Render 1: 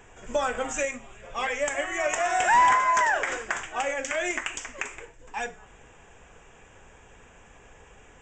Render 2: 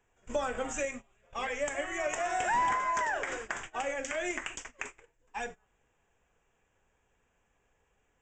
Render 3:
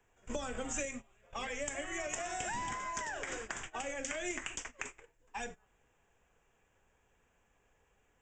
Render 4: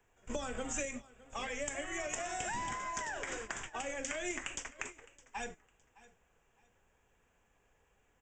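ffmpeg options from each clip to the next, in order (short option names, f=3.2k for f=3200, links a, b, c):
-filter_complex "[0:a]acrossover=split=490[a][b];[b]acompressor=threshold=-38dB:ratio=1.5[c];[a][c]amix=inputs=2:normalize=0,agate=range=-19dB:threshold=-39dB:ratio=16:detection=peak,volume=-2.5dB"
-filter_complex "[0:a]acrossover=split=290|3000[a][b][c];[b]acompressor=threshold=-41dB:ratio=6[d];[a][d][c]amix=inputs=3:normalize=0,volume=1dB"
-af "aecho=1:1:612|1224:0.0944|0.0245"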